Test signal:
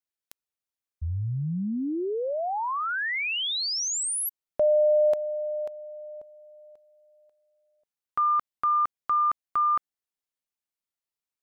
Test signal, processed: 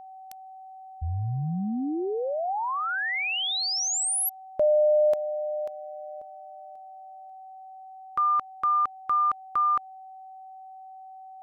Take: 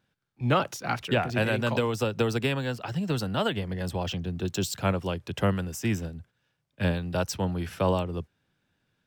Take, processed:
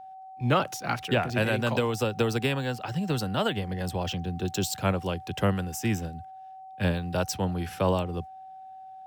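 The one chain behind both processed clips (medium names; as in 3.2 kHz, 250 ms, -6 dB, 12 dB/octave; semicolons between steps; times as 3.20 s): treble shelf 8.7 kHz +4 dB; whistle 760 Hz -42 dBFS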